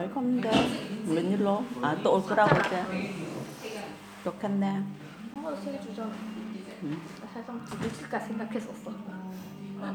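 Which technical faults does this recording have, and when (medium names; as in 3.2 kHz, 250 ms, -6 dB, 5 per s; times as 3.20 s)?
5.34–5.36 s: dropout 17 ms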